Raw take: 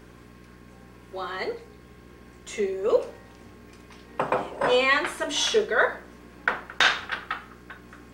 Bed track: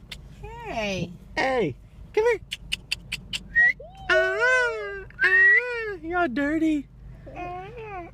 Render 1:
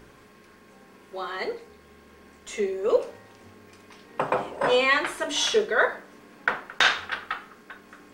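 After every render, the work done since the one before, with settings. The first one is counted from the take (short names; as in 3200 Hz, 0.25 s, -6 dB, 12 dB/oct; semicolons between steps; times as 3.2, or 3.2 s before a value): de-hum 60 Hz, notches 6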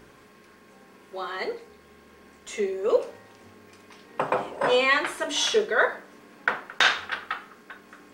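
low shelf 86 Hz -6.5 dB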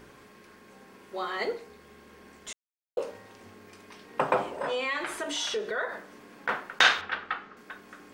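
2.53–2.97 mute; 4.45–6.49 compressor 3:1, threshold -30 dBFS; 7.01–7.57 air absorption 150 m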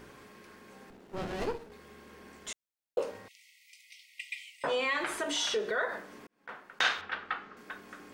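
0.9–1.72 running maximum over 33 samples; 3.28–4.64 brick-wall FIR high-pass 1900 Hz; 6.27–7.67 fade in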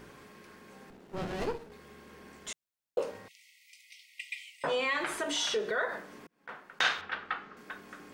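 bell 160 Hz +5 dB 0.27 oct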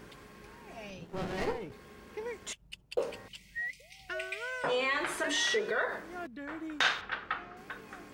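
add bed track -18.5 dB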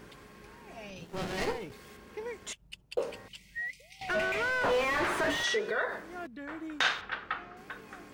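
0.96–1.97 high shelf 2400 Hz +8 dB; 4.01–5.44 overdrive pedal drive 32 dB, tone 1000 Hz, clips at -19 dBFS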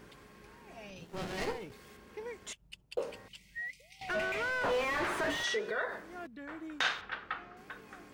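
gain -3.5 dB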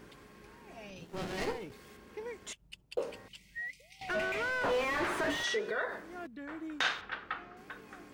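bell 300 Hz +2.5 dB 0.77 oct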